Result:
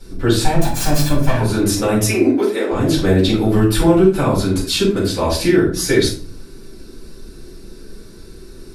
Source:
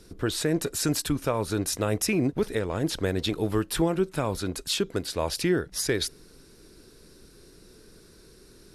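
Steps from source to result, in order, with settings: 0.43–1.41 minimum comb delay 1.2 ms; 2.05–2.72 steep high-pass 270 Hz; shoebox room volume 310 m³, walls furnished, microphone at 7.5 m; gain -1.5 dB

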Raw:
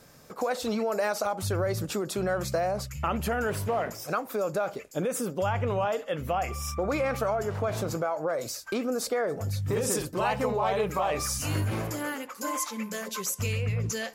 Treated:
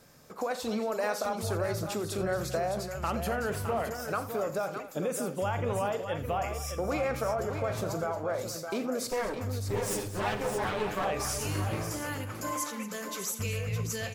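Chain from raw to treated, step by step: 9.11–11.05 minimum comb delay 9.8 ms; on a send: tapped delay 43/84/226/613 ms -14/-15.5/-14.5/-8 dB; on the sum: gain -3.5 dB

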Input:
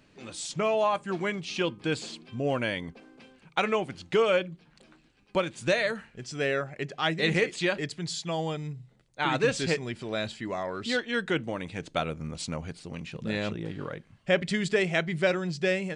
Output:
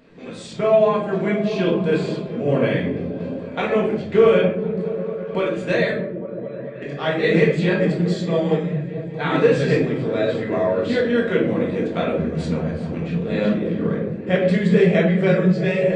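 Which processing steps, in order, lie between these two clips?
per-bin compression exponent 0.6; 5.91–6.82 octave resonator B, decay 0.26 s; repeats that get brighter 0.213 s, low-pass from 200 Hz, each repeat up 1 oct, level -3 dB; shoebox room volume 230 m³, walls mixed, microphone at 1.7 m; spectral expander 1.5:1

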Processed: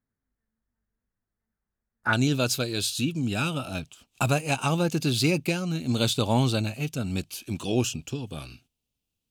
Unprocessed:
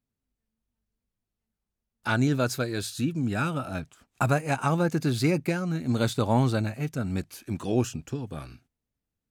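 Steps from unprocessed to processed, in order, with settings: resonant high shelf 2300 Hz -9 dB, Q 3, from 2.13 s +6 dB

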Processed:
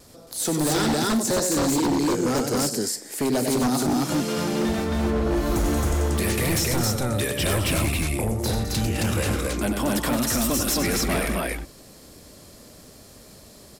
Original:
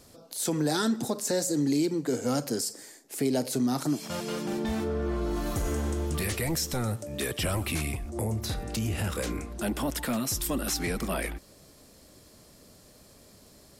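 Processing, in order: vibrato 1.1 Hz 16 cents; loudspeakers at several distances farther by 33 m -7 dB, 72 m -11 dB, 92 m -1 dB; wavefolder -21 dBFS; gain +4.5 dB

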